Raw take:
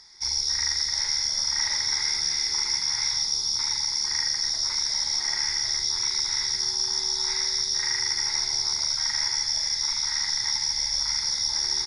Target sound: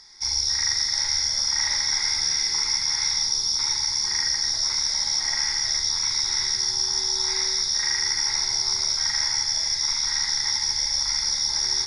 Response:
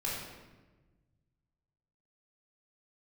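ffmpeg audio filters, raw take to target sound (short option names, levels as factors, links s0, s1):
-filter_complex "[0:a]asplit=2[s0][s1];[1:a]atrim=start_sample=2205,asetrate=29547,aresample=44100[s2];[s1][s2]afir=irnorm=-1:irlink=0,volume=0.251[s3];[s0][s3]amix=inputs=2:normalize=0"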